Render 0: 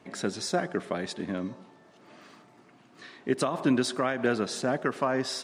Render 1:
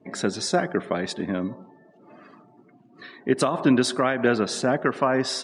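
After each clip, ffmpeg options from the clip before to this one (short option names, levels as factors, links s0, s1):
-af "afftdn=nr=23:nf=-52,volume=1.88"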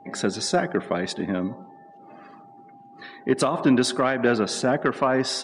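-af "aeval=exprs='val(0)+0.00398*sin(2*PI*800*n/s)':c=same,acontrast=67,volume=0.531"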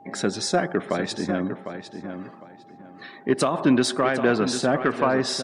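-filter_complex "[0:a]asplit=2[s0][s1];[s1]adelay=753,lowpass=f=4300:p=1,volume=0.355,asplit=2[s2][s3];[s3]adelay=753,lowpass=f=4300:p=1,volume=0.24,asplit=2[s4][s5];[s5]adelay=753,lowpass=f=4300:p=1,volume=0.24[s6];[s0][s2][s4][s6]amix=inputs=4:normalize=0"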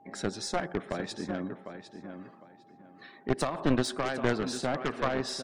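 -af "aeval=exprs='0.398*(cos(1*acos(clip(val(0)/0.398,-1,1)))-cos(1*PI/2))+0.2*(cos(4*acos(clip(val(0)/0.398,-1,1)))-cos(4*PI/2))+0.1*(cos(6*acos(clip(val(0)/0.398,-1,1)))-cos(6*PI/2))':c=same,volume=0.355"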